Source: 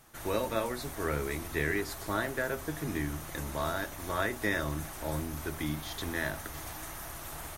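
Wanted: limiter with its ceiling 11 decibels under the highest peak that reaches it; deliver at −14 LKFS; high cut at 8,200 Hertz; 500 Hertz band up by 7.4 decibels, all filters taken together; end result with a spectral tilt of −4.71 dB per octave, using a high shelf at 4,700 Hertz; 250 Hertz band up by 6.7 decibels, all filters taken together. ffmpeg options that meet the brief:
ffmpeg -i in.wav -af "lowpass=8200,equalizer=frequency=250:width_type=o:gain=6,equalizer=frequency=500:width_type=o:gain=7.5,highshelf=frequency=4700:gain=7.5,volume=19.5dB,alimiter=limit=-2.5dB:level=0:latency=1" out.wav

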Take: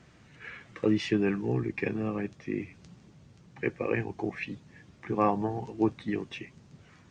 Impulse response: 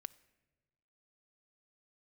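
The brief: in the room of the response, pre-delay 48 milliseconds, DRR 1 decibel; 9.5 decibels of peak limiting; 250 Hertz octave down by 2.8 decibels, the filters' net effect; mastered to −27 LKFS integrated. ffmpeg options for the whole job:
-filter_complex "[0:a]equalizer=frequency=250:width_type=o:gain=-4,alimiter=limit=-23dB:level=0:latency=1,asplit=2[link_01][link_02];[1:a]atrim=start_sample=2205,adelay=48[link_03];[link_02][link_03]afir=irnorm=-1:irlink=0,volume=3.5dB[link_04];[link_01][link_04]amix=inputs=2:normalize=0,volume=7dB"

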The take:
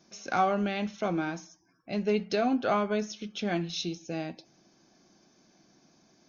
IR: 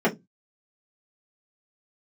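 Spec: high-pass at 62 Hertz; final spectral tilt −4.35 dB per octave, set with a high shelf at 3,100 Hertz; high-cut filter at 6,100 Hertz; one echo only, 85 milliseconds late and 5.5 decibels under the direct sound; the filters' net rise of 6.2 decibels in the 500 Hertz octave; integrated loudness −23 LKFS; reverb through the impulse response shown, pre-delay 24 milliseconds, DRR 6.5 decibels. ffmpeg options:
-filter_complex "[0:a]highpass=62,lowpass=6100,equalizer=frequency=500:width_type=o:gain=8.5,highshelf=frequency=3100:gain=-5,aecho=1:1:85:0.531,asplit=2[link_01][link_02];[1:a]atrim=start_sample=2205,adelay=24[link_03];[link_02][link_03]afir=irnorm=-1:irlink=0,volume=-23dB[link_04];[link_01][link_04]amix=inputs=2:normalize=0"

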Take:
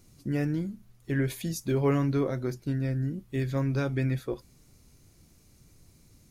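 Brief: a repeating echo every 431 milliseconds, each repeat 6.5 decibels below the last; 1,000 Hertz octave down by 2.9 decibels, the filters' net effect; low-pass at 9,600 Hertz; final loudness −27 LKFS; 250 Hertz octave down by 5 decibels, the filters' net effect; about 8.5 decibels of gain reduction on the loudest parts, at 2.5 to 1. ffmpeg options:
ffmpeg -i in.wav -af "lowpass=9600,equalizer=frequency=250:width_type=o:gain=-6.5,equalizer=frequency=1000:width_type=o:gain=-3.5,acompressor=threshold=-36dB:ratio=2.5,aecho=1:1:431|862|1293|1724|2155|2586:0.473|0.222|0.105|0.0491|0.0231|0.0109,volume=11dB" out.wav

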